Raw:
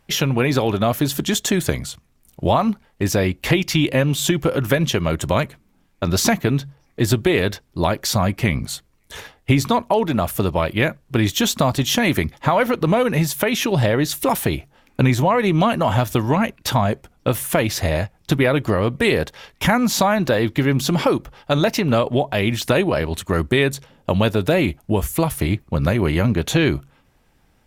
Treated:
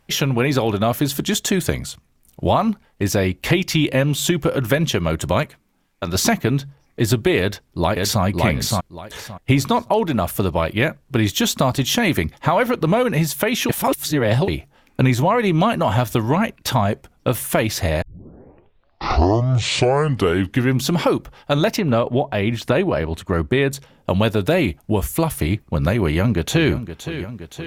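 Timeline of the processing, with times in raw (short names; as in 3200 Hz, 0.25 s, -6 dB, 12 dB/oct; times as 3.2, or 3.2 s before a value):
5.43–6.15 low shelf 390 Hz -7 dB
7.39–8.23 echo throw 0.57 s, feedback 20%, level -2 dB
13.69–14.48 reverse
18.02 tape start 2.84 s
21.76–23.73 high shelf 3900 Hz -11 dB
26.02–26.72 echo throw 0.52 s, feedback 70%, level -11.5 dB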